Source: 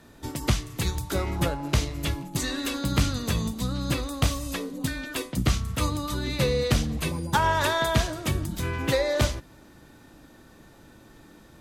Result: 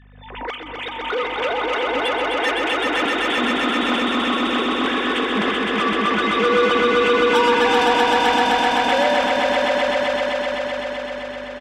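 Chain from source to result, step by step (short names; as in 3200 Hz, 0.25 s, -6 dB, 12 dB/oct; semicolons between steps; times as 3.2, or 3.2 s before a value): sine-wave speech; low shelf 380 Hz -11.5 dB; comb 4 ms, depth 36%; AGC gain up to 10 dB; hum 50 Hz, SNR 27 dB; soft clip -19 dBFS, distortion -6 dB; swelling echo 0.128 s, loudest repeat 5, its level -3 dB; on a send at -18.5 dB: reverb RT60 0.50 s, pre-delay 3 ms; on the sum: backwards sustainer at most 59 dB/s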